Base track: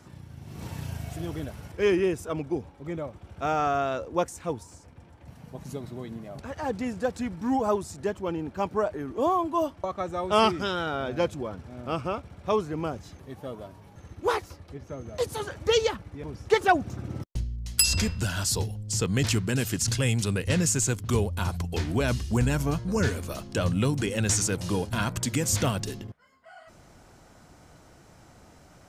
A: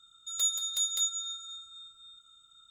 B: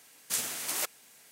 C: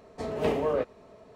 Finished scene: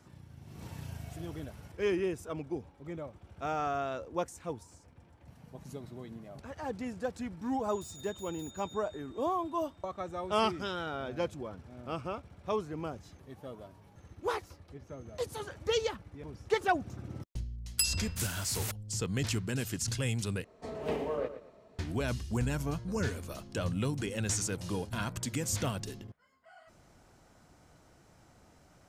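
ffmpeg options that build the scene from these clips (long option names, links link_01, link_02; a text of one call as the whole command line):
ffmpeg -i bed.wav -i cue0.wav -i cue1.wav -i cue2.wav -filter_complex "[0:a]volume=-7.5dB[link_01];[1:a]asoftclip=type=hard:threshold=-33.5dB[link_02];[2:a]aeval=exprs='sgn(val(0))*max(abs(val(0))-0.00447,0)':channel_layout=same[link_03];[3:a]aecho=1:1:118|236|354:0.266|0.0745|0.0209[link_04];[link_01]asplit=2[link_05][link_06];[link_05]atrim=end=20.444[link_07];[link_04]atrim=end=1.35,asetpts=PTS-STARTPTS,volume=-7dB[link_08];[link_06]atrim=start=21.786[link_09];[link_02]atrim=end=2.7,asetpts=PTS-STARTPTS,volume=-15.5dB,afade=type=in:duration=0.004:curve=hsin,afade=type=out:start_time=2.696:duration=0.004:curve=hsin,adelay=7420[link_10];[link_03]atrim=end=1.31,asetpts=PTS-STARTPTS,volume=-5.5dB,afade=type=in:duration=0.004:curve=hsin,afade=type=out:start_time=1.306:duration=0.004:curve=hsin,adelay=17860[link_11];[link_07][link_08]acrossfade=duration=0.004:curve1=hsin:curve2=hsin[link_12];[link_12][link_09]acrossfade=duration=0.004:curve1=hsin:curve2=hsin[link_13];[link_13][link_10][link_11]amix=inputs=3:normalize=0" out.wav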